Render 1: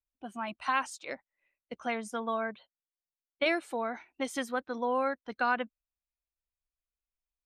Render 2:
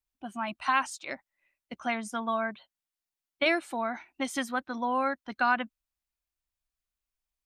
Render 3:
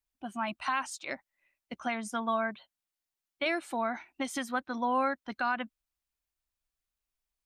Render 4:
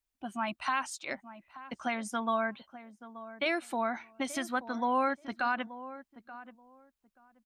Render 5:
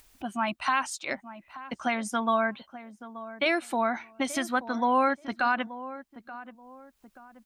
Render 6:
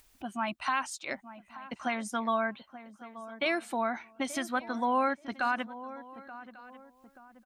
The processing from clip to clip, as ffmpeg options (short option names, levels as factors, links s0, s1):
-af "equalizer=f=470:t=o:w=0.29:g=-12,volume=1.5"
-af "alimiter=limit=0.1:level=0:latency=1:release=165"
-filter_complex "[0:a]asplit=2[s0][s1];[s1]adelay=880,lowpass=f=1100:p=1,volume=0.211,asplit=2[s2][s3];[s3]adelay=880,lowpass=f=1100:p=1,volume=0.2[s4];[s0][s2][s4]amix=inputs=3:normalize=0"
-af "acompressor=mode=upward:threshold=0.00501:ratio=2.5,volume=1.78"
-af "aecho=1:1:1143:0.0794,volume=0.631"